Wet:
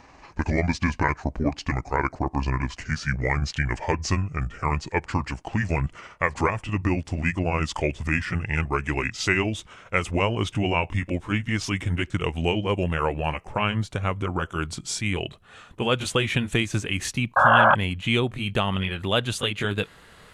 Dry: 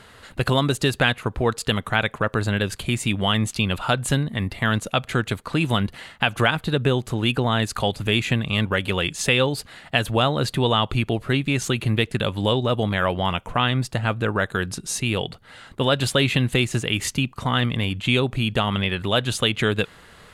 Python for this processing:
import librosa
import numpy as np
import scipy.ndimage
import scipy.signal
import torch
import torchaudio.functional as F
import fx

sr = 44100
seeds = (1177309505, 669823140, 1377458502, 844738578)

y = fx.pitch_glide(x, sr, semitones=-9.0, runs='ending unshifted')
y = fx.spec_paint(y, sr, seeds[0], shape='noise', start_s=17.36, length_s=0.39, low_hz=530.0, high_hz=1700.0, level_db=-14.0)
y = y * librosa.db_to_amplitude(-2.0)